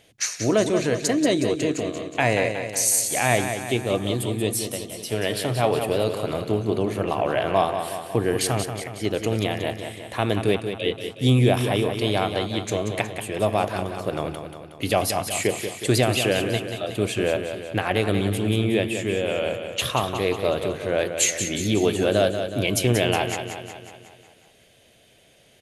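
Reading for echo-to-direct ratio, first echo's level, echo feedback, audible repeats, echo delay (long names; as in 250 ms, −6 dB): −6.5 dB, −8.0 dB, 57%, 6, 183 ms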